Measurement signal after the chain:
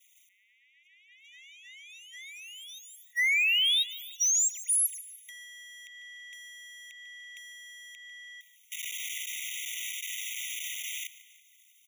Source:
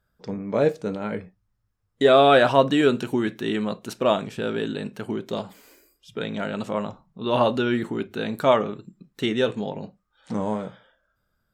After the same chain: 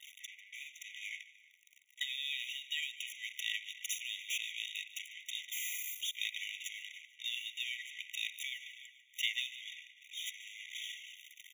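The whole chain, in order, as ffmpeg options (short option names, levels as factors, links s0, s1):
-filter_complex "[0:a]aeval=exprs='val(0)+0.5*0.0376*sgn(val(0))':c=same,anlmdn=10,asplit=2[s0][s1];[s1]adelay=331,lowpass=f=3500:p=1,volume=0.0794,asplit=2[s2][s3];[s3]adelay=331,lowpass=f=3500:p=1,volume=0.28[s4];[s2][s4]amix=inputs=2:normalize=0[s5];[s0][s5]amix=inputs=2:normalize=0,aeval=exprs='val(0)+0.002*(sin(2*PI*50*n/s)+sin(2*PI*2*50*n/s)/2+sin(2*PI*3*50*n/s)/3+sin(2*PI*4*50*n/s)/4+sin(2*PI*5*50*n/s)/5)':c=same,asplit=2[s6][s7];[s7]aecho=0:1:147|294|441|588:0.133|0.0587|0.0258|0.0114[s8];[s6][s8]amix=inputs=2:normalize=0,acompressor=threshold=0.0794:ratio=8,afftfilt=real='re*eq(mod(floor(b*sr/1024/1900),2),1)':imag='im*eq(mod(floor(b*sr/1024/1900),2),1)':win_size=1024:overlap=0.75"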